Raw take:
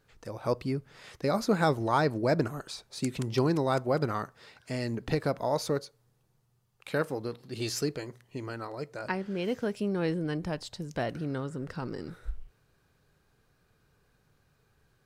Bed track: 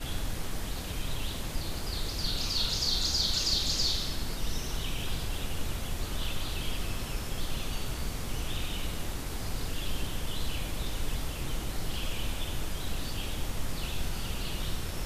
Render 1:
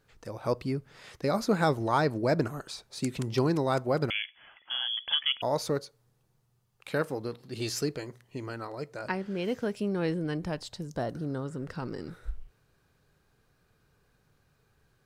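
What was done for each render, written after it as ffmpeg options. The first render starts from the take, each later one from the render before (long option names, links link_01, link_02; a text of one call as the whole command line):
ffmpeg -i in.wav -filter_complex "[0:a]asettb=1/sr,asplit=3[link_01][link_02][link_03];[link_01]atrim=end=4.104[link_04];[link_02]atrim=start=4.1:end=5.42,asetpts=PTS-STARTPTS,afade=type=in:duration=0.004:curve=qsin,afade=type=out:start_time=1.316:duration=0.004:curve=qsin,lowpass=frequency=3000:width_type=q:width=0.5098,lowpass=frequency=3000:width_type=q:width=0.6013,lowpass=frequency=3000:width_type=q:width=0.9,lowpass=frequency=3000:width_type=q:width=2.563,afreqshift=-3500[link_05];[link_03]atrim=start=5.416[link_06];[link_04][link_05]acrossfade=duration=0.004:curve1=hsin:curve2=qsin[link_07];[link_07][link_06]acrossfade=duration=0.004:curve1=qsin:curve2=hsin,asettb=1/sr,asplit=3[link_08][link_09][link_10];[link_08]atrim=end=10.874[link_11];[link_09]atrim=start=10.87:end=11.46,asetpts=PTS-STARTPTS,afade=type=in:duration=0.004:curve=qsin,afade=type=out:start_time=0.586:duration=0.004:curve=qsin,equalizer=frequency=2400:width=1.7:gain=-13.5[link_12];[link_10]atrim=start=11.456[link_13];[link_11][link_12]acrossfade=duration=0.004:curve1=hsin:curve2=qsin[link_14];[link_14][link_13]acrossfade=duration=0.004:curve1=qsin:curve2=hsin" out.wav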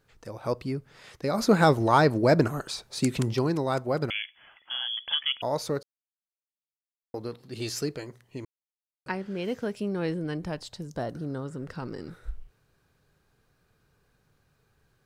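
ffmpeg -i in.wav -filter_complex "[0:a]asplit=3[link_01][link_02][link_03];[link_01]afade=type=out:start_time=1.37:duration=0.02[link_04];[link_02]acontrast=50,afade=type=in:start_time=1.37:duration=0.02,afade=type=out:start_time=3.32:duration=0.02[link_05];[link_03]afade=type=in:start_time=3.32:duration=0.02[link_06];[link_04][link_05][link_06]amix=inputs=3:normalize=0,asplit=5[link_07][link_08][link_09][link_10][link_11];[link_07]atrim=end=5.83,asetpts=PTS-STARTPTS,afade=type=out:start_time=5.826:duration=0.004:curve=hsin[link_12];[link_08]atrim=start=5.83:end=7.14,asetpts=PTS-STARTPTS,volume=0[link_13];[link_09]atrim=start=7.14:end=8.45,asetpts=PTS-STARTPTS,afade=type=in:duration=0.004:curve=hsin,afade=type=out:start_time=1.306:duration=0.004:curve=hsin[link_14];[link_10]atrim=start=8.45:end=9.06,asetpts=PTS-STARTPTS,volume=0[link_15];[link_11]atrim=start=9.06,asetpts=PTS-STARTPTS,afade=type=in:duration=0.004:curve=hsin[link_16];[link_12][link_13][link_14][link_15][link_16]concat=n=5:v=0:a=1" out.wav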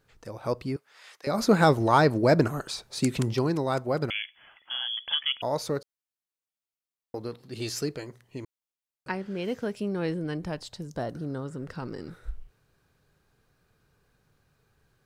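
ffmpeg -i in.wav -filter_complex "[0:a]asettb=1/sr,asplit=3[link_01][link_02][link_03];[link_01]atrim=end=0.764[link_04];[link_02]atrim=start=0.76:end=1.27,asetpts=PTS-STARTPTS,afade=type=in:duration=0.004:curve=qsin,afade=type=out:start_time=0.506:duration=0.004:curve=qsin,highpass=810[link_05];[link_03]atrim=start=1.266[link_06];[link_04][link_05]acrossfade=duration=0.004:curve1=hsin:curve2=qsin[link_07];[link_07][link_06]acrossfade=duration=0.004:curve1=qsin:curve2=hsin" out.wav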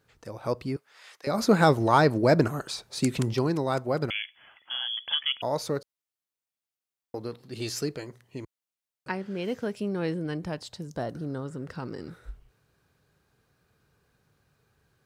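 ffmpeg -i in.wav -af "highpass=51" out.wav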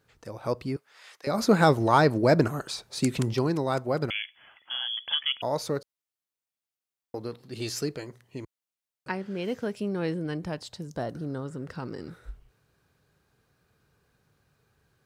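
ffmpeg -i in.wav -af anull out.wav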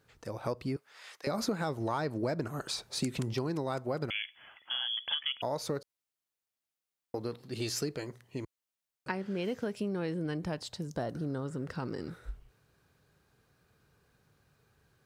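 ffmpeg -i in.wav -af "alimiter=limit=-10.5dB:level=0:latency=1:release=375,acompressor=threshold=-30dB:ratio=5" out.wav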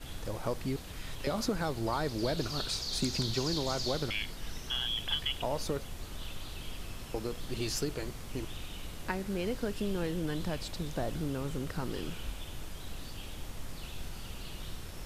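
ffmpeg -i in.wav -i bed.wav -filter_complex "[1:a]volume=-8.5dB[link_01];[0:a][link_01]amix=inputs=2:normalize=0" out.wav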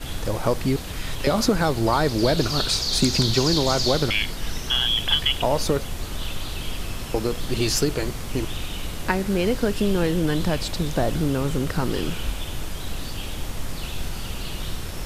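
ffmpeg -i in.wav -af "volume=12dB" out.wav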